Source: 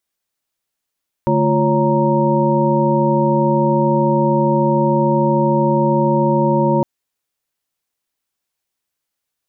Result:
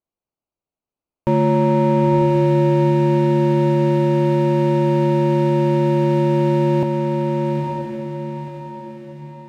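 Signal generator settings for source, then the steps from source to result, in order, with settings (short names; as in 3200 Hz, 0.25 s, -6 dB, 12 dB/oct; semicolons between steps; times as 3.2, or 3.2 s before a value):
chord D3/A3/F4/C#5/A#5 sine, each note -18.5 dBFS 5.56 s
Wiener smoothing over 25 samples; on a send: diffused feedback echo 0.95 s, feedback 43%, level -3.5 dB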